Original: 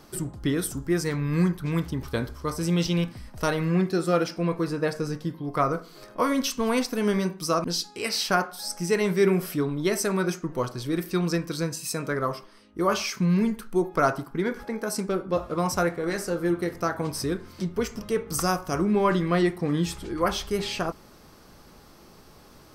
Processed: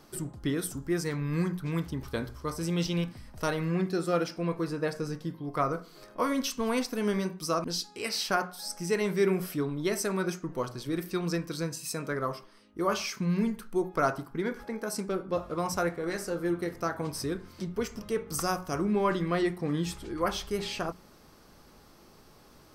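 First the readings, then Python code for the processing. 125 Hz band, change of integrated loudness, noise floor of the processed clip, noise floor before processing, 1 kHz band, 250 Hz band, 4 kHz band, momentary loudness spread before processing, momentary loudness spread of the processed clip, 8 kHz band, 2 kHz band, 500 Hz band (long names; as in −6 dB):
−5.5 dB, −5.0 dB, −56 dBFS, −51 dBFS, −4.5 dB, −5.0 dB, −4.5 dB, 8 LU, 7 LU, −4.5 dB, −4.5 dB, −4.5 dB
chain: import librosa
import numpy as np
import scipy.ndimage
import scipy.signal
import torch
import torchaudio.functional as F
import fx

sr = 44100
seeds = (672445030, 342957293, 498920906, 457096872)

y = fx.hum_notches(x, sr, base_hz=60, count=3)
y = y * 10.0 ** (-4.5 / 20.0)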